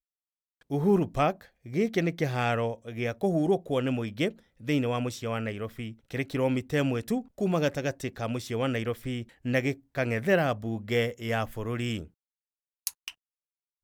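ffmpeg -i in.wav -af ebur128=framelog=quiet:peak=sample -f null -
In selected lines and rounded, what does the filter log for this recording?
Integrated loudness:
  I:         -29.4 LUFS
  Threshold: -39.7 LUFS
Loudness range:
  LRA:         2.1 LU
  Threshold: -49.7 LUFS
  LRA low:   -30.7 LUFS
  LRA high:  -28.5 LUFS
Sample peak:
  Peak:       -9.3 dBFS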